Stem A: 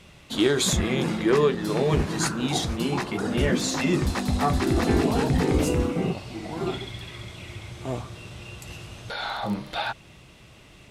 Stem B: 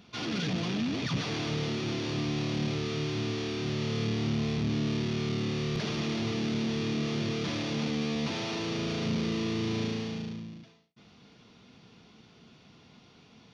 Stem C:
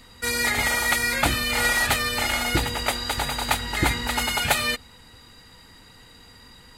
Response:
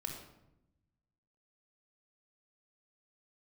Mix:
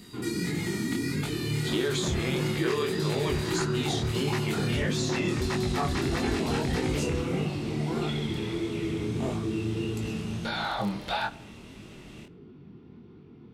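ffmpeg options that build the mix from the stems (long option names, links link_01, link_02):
-filter_complex "[0:a]adelay=1350,volume=2.5dB,asplit=2[link_01][link_02];[link_02]volume=-14dB[link_03];[1:a]lowpass=1200,lowshelf=frequency=460:width_type=q:width=3:gain=7.5,volume=0dB,asplit=2[link_04][link_05];[link_05]volume=-7dB[link_06];[2:a]volume=-5.5dB[link_07];[link_04][link_07]amix=inputs=2:normalize=0,highshelf=frequency=2700:gain=12,acompressor=threshold=-34dB:ratio=2.5,volume=0dB[link_08];[3:a]atrim=start_sample=2205[link_09];[link_03][link_06]amix=inputs=2:normalize=0[link_10];[link_10][link_09]afir=irnorm=-1:irlink=0[link_11];[link_01][link_08][link_11]amix=inputs=3:normalize=0,flanger=delay=19:depth=7.2:speed=1.6,acrossover=split=1500|7500[link_12][link_13][link_14];[link_12]acompressor=threshold=-26dB:ratio=4[link_15];[link_13]acompressor=threshold=-33dB:ratio=4[link_16];[link_14]acompressor=threshold=-52dB:ratio=4[link_17];[link_15][link_16][link_17]amix=inputs=3:normalize=0"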